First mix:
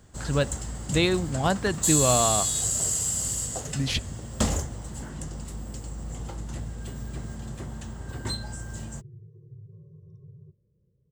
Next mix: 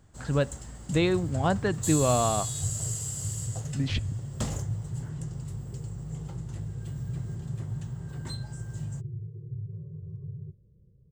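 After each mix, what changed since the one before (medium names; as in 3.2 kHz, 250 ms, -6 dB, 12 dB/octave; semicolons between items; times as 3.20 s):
speech: add tape spacing loss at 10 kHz 20 dB; first sound -8.5 dB; second sound: add tilt EQ -3 dB/octave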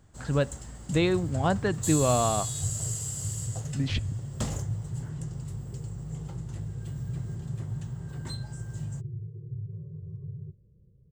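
no change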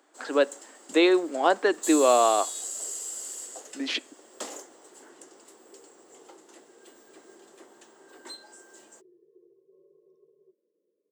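speech +6.0 dB; master: add steep high-pass 290 Hz 48 dB/octave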